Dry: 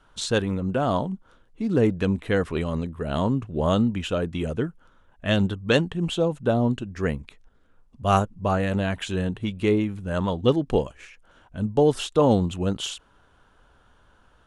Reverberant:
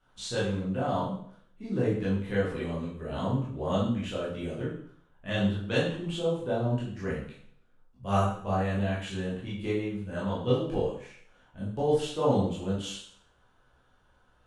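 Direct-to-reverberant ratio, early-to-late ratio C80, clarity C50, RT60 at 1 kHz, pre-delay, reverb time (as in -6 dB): -8.5 dB, 7.0 dB, 2.5 dB, 0.60 s, 7 ms, 0.60 s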